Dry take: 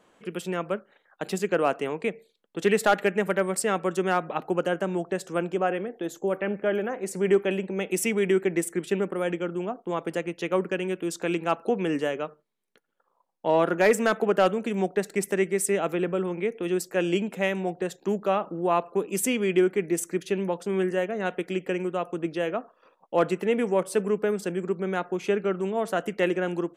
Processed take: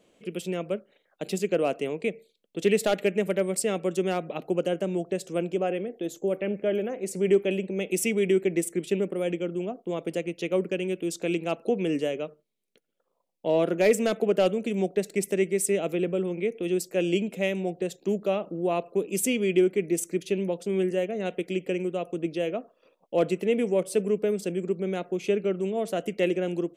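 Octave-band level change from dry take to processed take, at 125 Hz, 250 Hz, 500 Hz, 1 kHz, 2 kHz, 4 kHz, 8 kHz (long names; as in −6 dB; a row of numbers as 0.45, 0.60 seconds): 0.0, 0.0, 0.0, −7.5, −4.5, 0.0, 0.0 decibels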